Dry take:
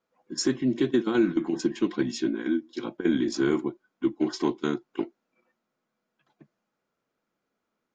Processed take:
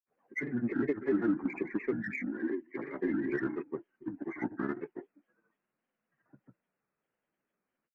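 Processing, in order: knee-point frequency compression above 1.5 kHz 4:1; level-controlled noise filter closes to 2.1 kHz; in parallel at -8 dB: saturation -29.5 dBFS, distortion -6 dB; on the sum: granulator, grains 20 per s, pitch spread up and down by 3 st; trim -7.5 dB

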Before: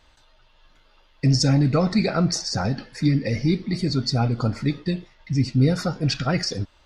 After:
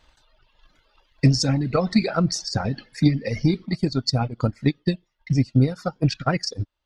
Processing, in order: reverb removal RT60 1.3 s; transient shaper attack +8 dB, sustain +4 dB, from 3.65 s sustain -9 dB; trim -2.5 dB

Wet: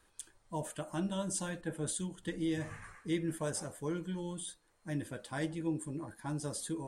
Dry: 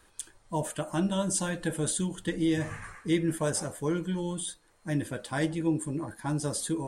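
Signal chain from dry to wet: 1.61–2.23 s: three bands expanded up and down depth 70%; trim -7.5 dB

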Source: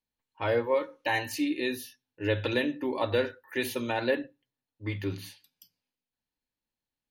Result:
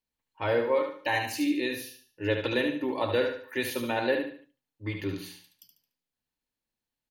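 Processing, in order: feedback delay 73 ms, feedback 35%, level -6 dB

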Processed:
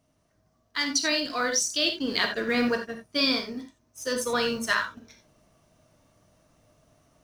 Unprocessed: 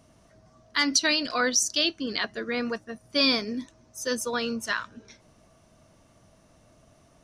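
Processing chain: companding laws mixed up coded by A; gain riding within 5 dB 0.5 s; reverberation, pre-delay 3 ms, DRR 3.5 dB

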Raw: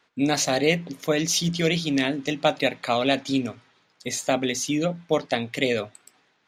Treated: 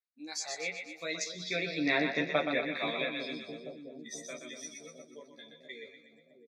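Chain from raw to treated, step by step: Doppler pass-by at 2.05 s, 19 m/s, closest 4 m; gate -52 dBFS, range -6 dB; frequency weighting D; spectral noise reduction 16 dB; tone controls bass -5 dB, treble +3 dB; doubling 13 ms -2 dB; on a send: two-band feedback delay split 530 Hz, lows 659 ms, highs 122 ms, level -6 dB; on the sum: low-pass that closes with the level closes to 1.7 kHz, closed at -20 dBFS; Butterworth band-stop 3 kHz, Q 3; trim -3.5 dB

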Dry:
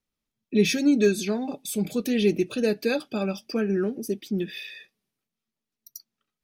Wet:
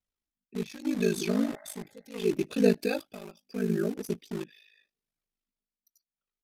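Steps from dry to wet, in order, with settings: 1.34–2.23 s: spectral replace 580–2100 Hz both; tremolo 0.75 Hz, depth 83%; dynamic bell 270 Hz, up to +4 dB, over -32 dBFS, Q 0.77; flange 0.97 Hz, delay 1.2 ms, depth 3.9 ms, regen +31%; 2.79–3.94 s: careless resampling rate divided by 2×, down none, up zero stuff; in parallel at -4.5 dB: bit crusher 6-bit; on the sum: ring modulator 26 Hz; resampled via 32 kHz

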